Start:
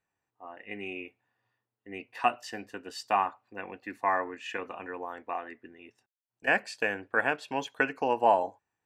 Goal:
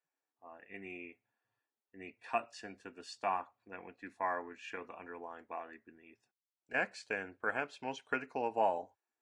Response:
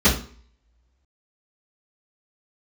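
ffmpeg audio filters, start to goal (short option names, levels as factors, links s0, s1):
-af "asetrate=42336,aresample=44100,volume=0.376" -ar 22050 -c:a libvorbis -b:a 48k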